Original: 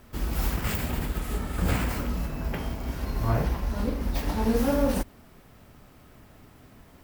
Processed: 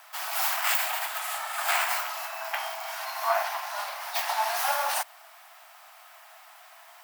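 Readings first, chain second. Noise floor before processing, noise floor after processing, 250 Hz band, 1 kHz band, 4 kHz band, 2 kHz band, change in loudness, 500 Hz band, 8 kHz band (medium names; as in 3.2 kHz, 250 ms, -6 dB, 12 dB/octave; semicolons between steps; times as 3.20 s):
-53 dBFS, -52 dBFS, under -40 dB, +8.0 dB, +8.0 dB, +8.0 dB, +0.5 dB, -4.0 dB, +8.0 dB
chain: steep high-pass 650 Hz 96 dB/octave; trim +8 dB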